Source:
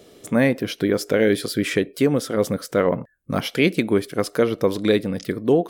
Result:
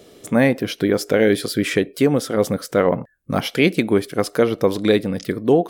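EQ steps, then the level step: dynamic bell 780 Hz, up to +5 dB, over -40 dBFS, Q 5.2; +2.0 dB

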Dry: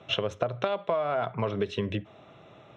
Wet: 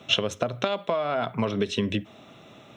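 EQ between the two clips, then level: peaking EQ 240 Hz +9.5 dB 0.65 oct; treble shelf 2.8 kHz +9.5 dB; treble shelf 6 kHz +9.5 dB; 0.0 dB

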